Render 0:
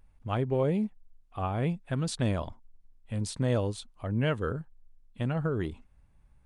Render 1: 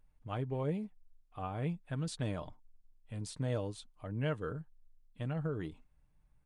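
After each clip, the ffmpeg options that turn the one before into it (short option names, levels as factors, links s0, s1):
-af "aecho=1:1:6.6:0.38,volume=0.376"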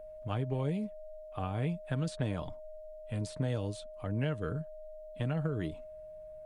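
-filter_complex "[0:a]acrossover=split=280|2400[s0][s1][s2];[s0]acompressor=threshold=0.0112:ratio=4[s3];[s1]acompressor=threshold=0.00562:ratio=4[s4];[s2]acompressor=threshold=0.00158:ratio=4[s5];[s3][s4][s5]amix=inputs=3:normalize=0,aeval=exprs='val(0)+0.00251*sin(2*PI*620*n/s)':c=same,aeval=exprs='0.0422*(cos(1*acos(clip(val(0)/0.0422,-1,1)))-cos(1*PI/2))+0.00168*(cos(3*acos(clip(val(0)/0.0422,-1,1)))-cos(3*PI/2))':c=same,volume=2.51"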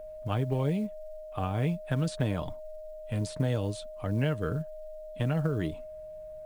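-af "acrusher=bits=9:mode=log:mix=0:aa=0.000001,volume=1.68"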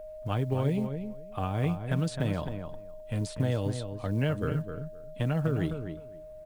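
-filter_complex "[0:a]asplit=2[s0][s1];[s1]adelay=259,lowpass=f=2200:p=1,volume=0.422,asplit=2[s2][s3];[s3]adelay=259,lowpass=f=2200:p=1,volume=0.16,asplit=2[s4][s5];[s5]adelay=259,lowpass=f=2200:p=1,volume=0.16[s6];[s0][s2][s4][s6]amix=inputs=4:normalize=0"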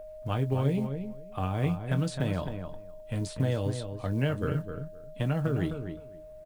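-filter_complex "[0:a]asplit=2[s0][s1];[s1]adelay=22,volume=0.282[s2];[s0][s2]amix=inputs=2:normalize=0"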